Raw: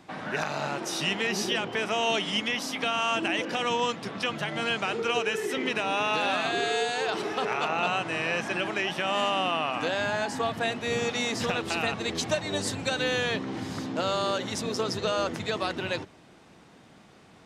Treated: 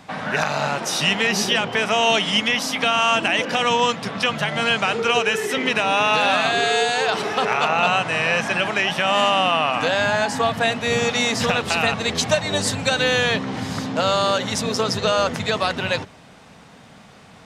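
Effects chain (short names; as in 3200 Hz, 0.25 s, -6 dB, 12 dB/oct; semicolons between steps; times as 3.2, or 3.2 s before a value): bell 340 Hz -12.5 dB 0.35 oct; gain +9 dB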